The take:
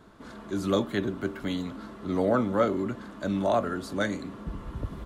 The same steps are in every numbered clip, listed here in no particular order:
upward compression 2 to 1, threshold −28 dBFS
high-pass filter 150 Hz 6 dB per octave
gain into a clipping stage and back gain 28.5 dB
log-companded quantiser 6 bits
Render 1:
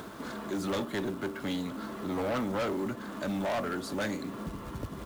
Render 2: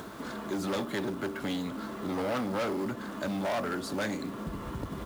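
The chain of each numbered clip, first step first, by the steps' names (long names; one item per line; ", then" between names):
log-companded quantiser, then upward compression, then high-pass filter, then gain into a clipping stage and back
gain into a clipping stage and back, then high-pass filter, then log-companded quantiser, then upward compression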